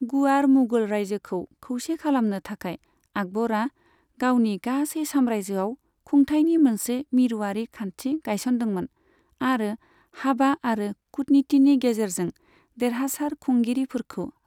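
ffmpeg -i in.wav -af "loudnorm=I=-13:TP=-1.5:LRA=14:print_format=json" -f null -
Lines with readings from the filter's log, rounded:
"input_i" : "-24.4",
"input_tp" : "-9.5",
"input_lra" : "3.4",
"input_thresh" : "-34.8",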